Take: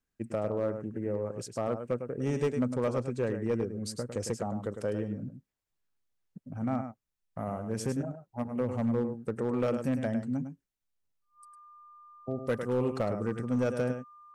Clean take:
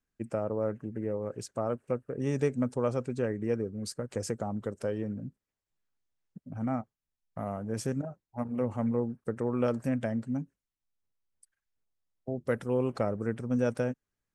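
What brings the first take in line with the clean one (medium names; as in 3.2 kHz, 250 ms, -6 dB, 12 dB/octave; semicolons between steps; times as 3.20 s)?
clip repair -22.5 dBFS; band-stop 1.2 kHz, Q 30; inverse comb 104 ms -8.5 dB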